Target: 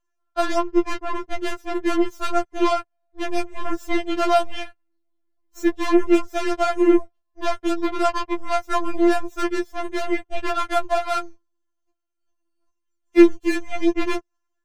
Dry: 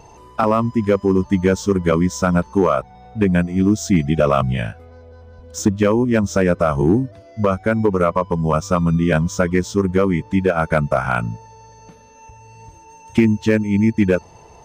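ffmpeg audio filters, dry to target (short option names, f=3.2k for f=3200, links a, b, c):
-filter_complex "[0:a]asettb=1/sr,asplit=3[a][b][c];[a]atrim=end=0.584[d];[b]atrim=start=0.58:end=2.06,asetpts=PTS-STARTPTS,afade=t=in:d=0.004:c=qsin,afade=t=out:st=1.476:d=0.004:c=qsin,adynamicsmooth=sensitivity=6.5:basefreq=3.7k[e];[c]atrim=start=2.056[f];[d][e]acrossfade=d=0.004:c1=hsin:c2=qsin[g];[g][f]acrossfade=d=0.004:c1=qsin:c2=hsin,aeval=exprs='0.531*(cos(1*acos(clip(val(0)/0.531,-1,1)))-cos(1*PI/2))+0.0211*(cos(3*acos(clip(val(0)/0.531,-1,1)))-cos(3*PI/2))+0.0237*(cos(6*acos(clip(val(0)/0.531,-1,1)))-cos(6*PI/2))+0.0668*(cos(7*acos(clip(val(0)/0.531,-1,1)))-cos(7*PI/2))':c=same,afftfilt=real='re*4*eq(mod(b,16),0)':imag='im*4*eq(mod(b,16),0)':win_size=2048:overlap=0.75"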